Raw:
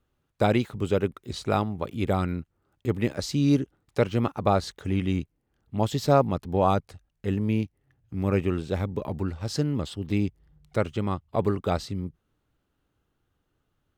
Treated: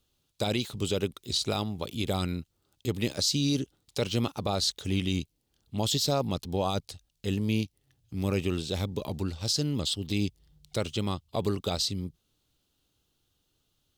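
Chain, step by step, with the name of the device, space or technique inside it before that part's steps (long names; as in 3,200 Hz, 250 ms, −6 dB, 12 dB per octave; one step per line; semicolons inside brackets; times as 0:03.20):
over-bright horn tweeter (high shelf with overshoot 2,600 Hz +12.5 dB, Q 1.5; brickwall limiter −14.5 dBFS, peak gain reduction 9.5 dB)
level −2.5 dB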